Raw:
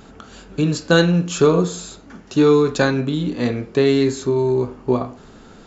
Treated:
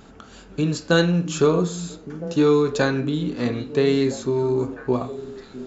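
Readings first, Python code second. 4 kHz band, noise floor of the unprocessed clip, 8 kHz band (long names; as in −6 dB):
−3.5 dB, −44 dBFS, can't be measured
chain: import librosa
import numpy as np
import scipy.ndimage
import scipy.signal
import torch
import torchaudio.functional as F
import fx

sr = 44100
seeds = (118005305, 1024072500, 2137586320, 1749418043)

y = fx.echo_stepped(x, sr, ms=656, hz=210.0, octaves=1.4, feedback_pct=70, wet_db=-9.5)
y = F.gain(torch.from_numpy(y), -3.5).numpy()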